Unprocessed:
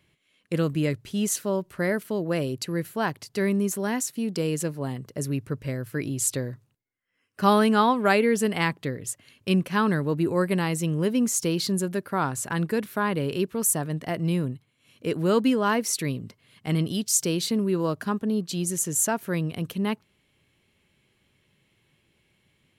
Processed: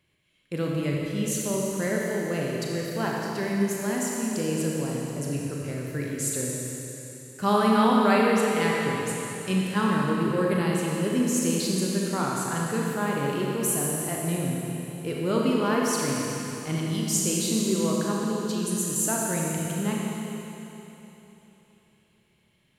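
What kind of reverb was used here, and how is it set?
Schroeder reverb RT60 3.4 s, combs from 28 ms, DRR -3 dB; gain -5 dB

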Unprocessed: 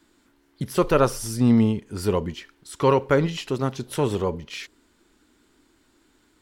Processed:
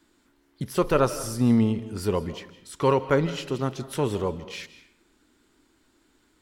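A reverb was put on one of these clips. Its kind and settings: digital reverb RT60 0.68 s, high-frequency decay 0.7×, pre-delay 0.12 s, DRR 14 dB; gain -2.5 dB

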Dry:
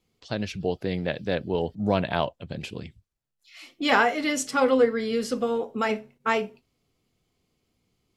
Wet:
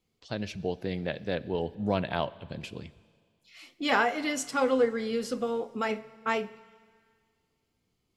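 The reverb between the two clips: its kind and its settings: Schroeder reverb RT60 2 s, combs from 28 ms, DRR 18.5 dB; gain -4.5 dB

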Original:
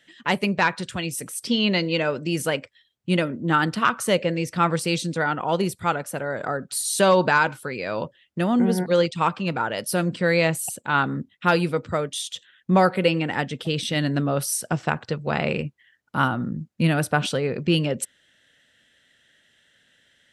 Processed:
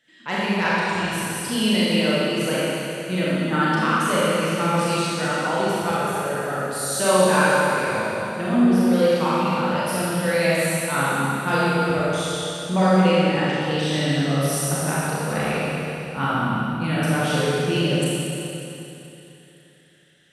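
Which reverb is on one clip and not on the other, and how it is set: Schroeder reverb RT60 3.1 s, combs from 29 ms, DRR -9 dB; gain -7.5 dB

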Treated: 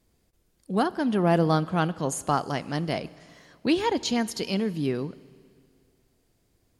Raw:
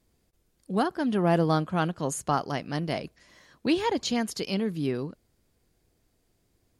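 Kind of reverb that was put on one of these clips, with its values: Schroeder reverb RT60 2.2 s, combs from 30 ms, DRR 18.5 dB; gain +1.5 dB

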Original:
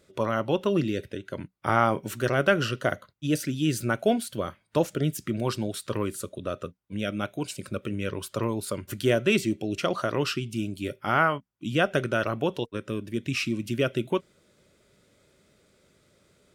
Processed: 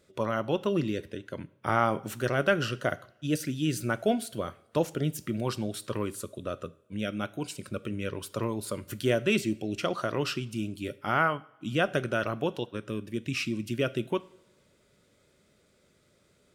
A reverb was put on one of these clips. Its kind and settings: two-slope reverb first 0.55 s, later 2 s, from -19 dB, DRR 16.5 dB; gain -3 dB

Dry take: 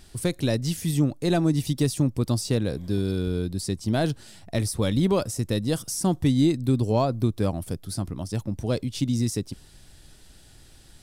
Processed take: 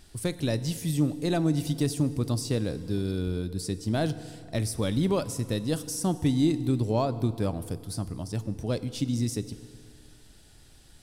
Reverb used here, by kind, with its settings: FDN reverb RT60 2.3 s, low-frequency decay 0.95×, high-frequency decay 0.8×, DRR 13 dB; gain -3.5 dB

